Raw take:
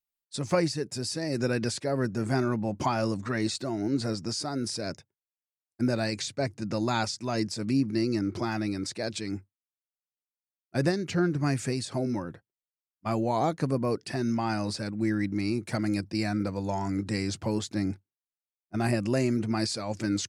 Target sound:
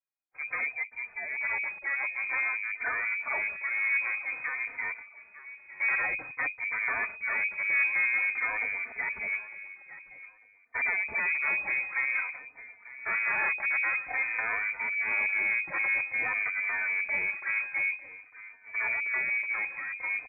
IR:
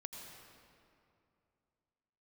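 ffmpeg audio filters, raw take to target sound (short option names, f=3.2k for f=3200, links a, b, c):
-filter_complex "[0:a]acrossover=split=140[a][b];[b]dynaudnorm=f=630:g=11:m=6dB[c];[a][c]amix=inputs=2:normalize=0,aeval=exprs='0.501*(cos(1*acos(clip(val(0)/0.501,-1,1)))-cos(1*PI/2))+0.2*(cos(4*acos(clip(val(0)/0.501,-1,1)))-cos(4*PI/2))':c=same,aresample=16000,asoftclip=type=tanh:threshold=-19.5dB,aresample=44100,aecho=1:1:901|1802:0.158|0.038,lowpass=f=2.1k:t=q:w=0.5098,lowpass=f=2.1k:t=q:w=0.6013,lowpass=f=2.1k:t=q:w=0.9,lowpass=f=2.1k:t=q:w=2.563,afreqshift=-2500,asplit=2[d][e];[e]adelay=3.2,afreqshift=-0.51[f];[d][f]amix=inputs=2:normalize=1"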